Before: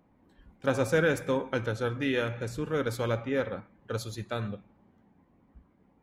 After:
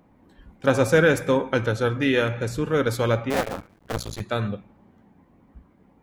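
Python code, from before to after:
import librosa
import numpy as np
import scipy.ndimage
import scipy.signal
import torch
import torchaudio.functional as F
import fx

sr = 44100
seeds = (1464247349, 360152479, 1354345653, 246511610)

y = fx.cycle_switch(x, sr, every=2, mode='muted', at=(3.3, 4.21))
y = y * librosa.db_to_amplitude(7.5)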